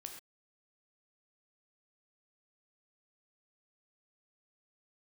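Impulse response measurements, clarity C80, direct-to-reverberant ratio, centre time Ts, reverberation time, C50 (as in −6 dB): 8.0 dB, 3.0 dB, 24 ms, non-exponential decay, 6.0 dB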